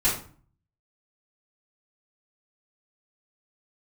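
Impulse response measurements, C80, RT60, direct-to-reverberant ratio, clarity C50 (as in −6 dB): 10.5 dB, 0.45 s, −10.5 dB, 6.0 dB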